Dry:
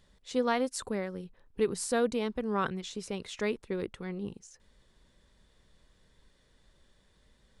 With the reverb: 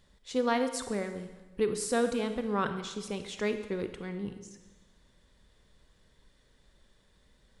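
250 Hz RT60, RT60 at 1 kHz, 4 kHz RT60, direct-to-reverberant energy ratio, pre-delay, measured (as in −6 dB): 1.2 s, 1.2 s, 1.1 s, 8.0 dB, 27 ms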